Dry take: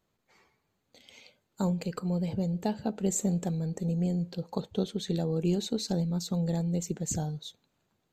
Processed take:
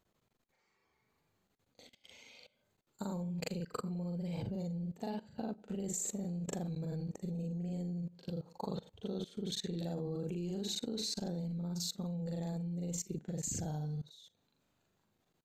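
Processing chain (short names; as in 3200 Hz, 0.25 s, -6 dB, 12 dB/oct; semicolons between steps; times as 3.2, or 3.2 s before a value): granular stretch 1.9×, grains 0.17 s; level quantiser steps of 20 dB; gain +2 dB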